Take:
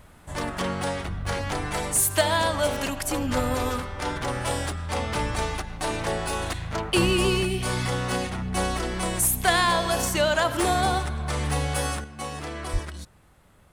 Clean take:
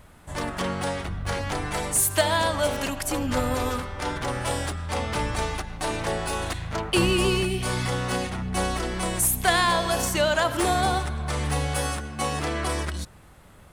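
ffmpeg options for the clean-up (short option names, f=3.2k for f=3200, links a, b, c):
-filter_complex "[0:a]asplit=3[a][b][c];[a]afade=t=out:st=12.72:d=0.02[d];[b]highpass=f=140:w=0.5412,highpass=f=140:w=1.3066,afade=t=in:st=12.72:d=0.02,afade=t=out:st=12.84:d=0.02[e];[c]afade=t=in:st=12.84:d=0.02[f];[d][e][f]amix=inputs=3:normalize=0,asetnsamples=n=441:p=0,asendcmd='12.04 volume volume 6.5dB',volume=0dB"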